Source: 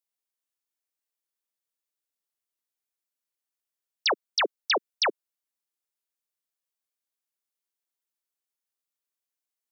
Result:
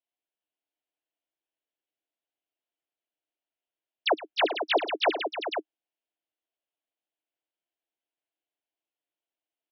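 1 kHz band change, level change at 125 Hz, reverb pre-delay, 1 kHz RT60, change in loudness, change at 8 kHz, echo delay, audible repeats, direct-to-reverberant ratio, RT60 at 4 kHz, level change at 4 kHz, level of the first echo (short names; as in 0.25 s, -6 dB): +2.5 dB, n/a, none, none, -1.0 dB, n/a, 0.111 s, 4, none, none, -2.0 dB, -18.5 dB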